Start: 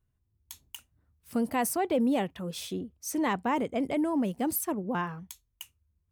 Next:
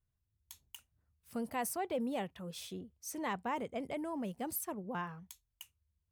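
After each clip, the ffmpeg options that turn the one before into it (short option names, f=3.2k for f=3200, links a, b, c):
-af "equalizer=f=290:t=o:w=0.67:g=-6,volume=-7.5dB"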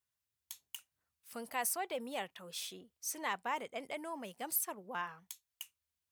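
-af "highpass=f=1.3k:p=1,volume=5dB"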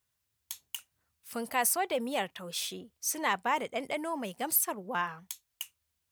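-af "lowshelf=f=210:g=5,volume=7.5dB"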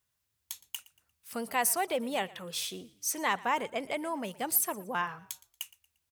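-filter_complex "[0:a]asplit=4[a][b][c][d];[b]adelay=116,afreqshift=-40,volume=-21dB[e];[c]adelay=232,afreqshift=-80,volume=-29.9dB[f];[d]adelay=348,afreqshift=-120,volume=-38.7dB[g];[a][e][f][g]amix=inputs=4:normalize=0"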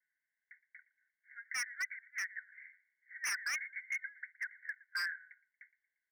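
-af "asuperpass=centerf=1800:order=20:qfactor=2.5,aeval=exprs='0.015*(abs(mod(val(0)/0.015+3,4)-2)-1)':c=same,volume=6dB"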